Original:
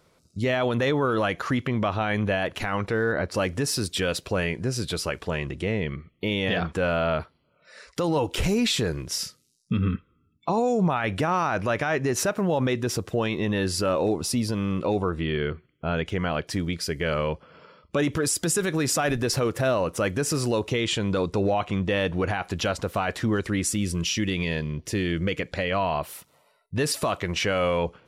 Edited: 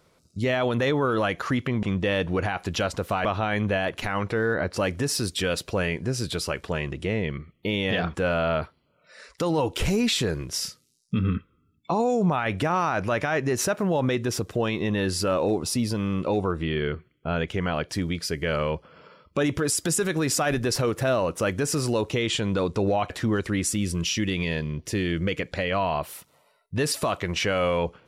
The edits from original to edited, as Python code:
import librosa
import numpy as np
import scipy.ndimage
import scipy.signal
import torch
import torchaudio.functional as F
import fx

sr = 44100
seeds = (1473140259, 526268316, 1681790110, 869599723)

y = fx.edit(x, sr, fx.move(start_s=21.68, length_s=1.42, to_s=1.83), tone=tone)